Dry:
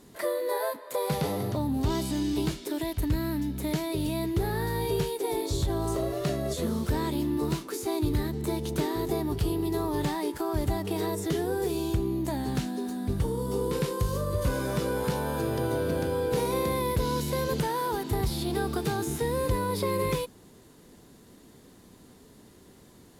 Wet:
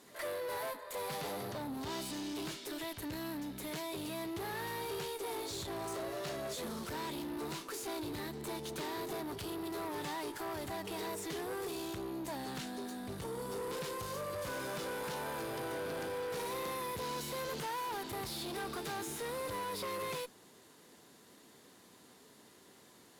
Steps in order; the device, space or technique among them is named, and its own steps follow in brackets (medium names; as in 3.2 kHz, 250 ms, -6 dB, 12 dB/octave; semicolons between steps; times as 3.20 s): high-pass 79 Hz; bass shelf 460 Hz -12 dB; tube preamp driven hard (valve stage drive 38 dB, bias 0.4; bass shelf 97 Hz -7 dB; treble shelf 6 kHz -4 dB); pre-echo 117 ms -22.5 dB; trim +2 dB